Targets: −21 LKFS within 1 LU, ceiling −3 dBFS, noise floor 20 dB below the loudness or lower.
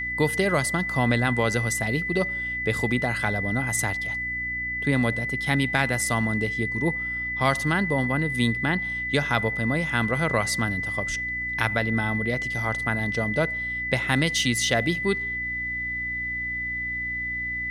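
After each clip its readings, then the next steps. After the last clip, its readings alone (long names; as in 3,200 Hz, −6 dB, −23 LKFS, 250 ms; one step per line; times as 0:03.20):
mains hum 60 Hz; hum harmonics up to 300 Hz; level of the hum −40 dBFS; interfering tone 2,000 Hz; level of the tone −27 dBFS; integrated loudness −24.5 LKFS; sample peak −5.0 dBFS; target loudness −21.0 LKFS
→ hum removal 60 Hz, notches 5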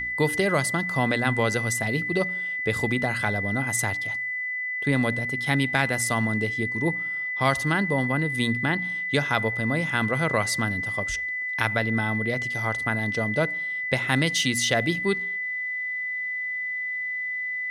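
mains hum none found; interfering tone 2,000 Hz; level of the tone −27 dBFS
→ notch filter 2,000 Hz, Q 30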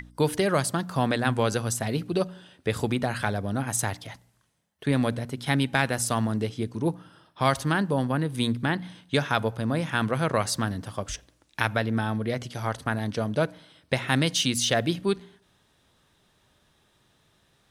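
interfering tone none found; integrated loudness −27.0 LKFS; sample peak −5.0 dBFS; target loudness −21.0 LKFS
→ level +6 dB
brickwall limiter −3 dBFS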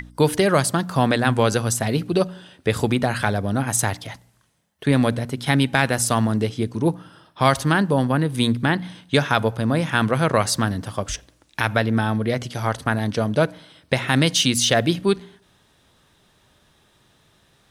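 integrated loudness −21.0 LKFS; sample peak −3.0 dBFS; background noise floor −60 dBFS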